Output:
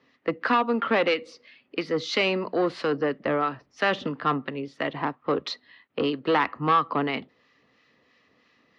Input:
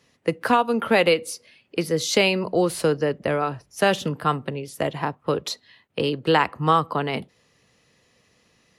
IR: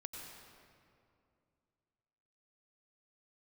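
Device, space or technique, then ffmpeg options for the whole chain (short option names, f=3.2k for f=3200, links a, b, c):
guitar amplifier with harmonic tremolo: -filter_complex "[0:a]acrossover=split=1100[a][b];[a]aeval=exprs='val(0)*(1-0.5/2+0.5/2*cos(2*PI*3*n/s))':c=same[c];[b]aeval=exprs='val(0)*(1-0.5/2-0.5/2*cos(2*PI*3*n/s))':c=same[d];[c][d]amix=inputs=2:normalize=0,asoftclip=type=tanh:threshold=-17dB,highpass=97,equalizer=f=110:t=q:w=4:g=-9,equalizer=f=170:t=q:w=4:g=-6,equalizer=f=270:t=q:w=4:g=7,equalizer=f=1.2k:t=q:w=4:g=6,equalizer=f=1.9k:t=q:w=4:g=5,lowpass=f=4.5k:w=0.5412,lowpass=f=4.5k:w=1.3066"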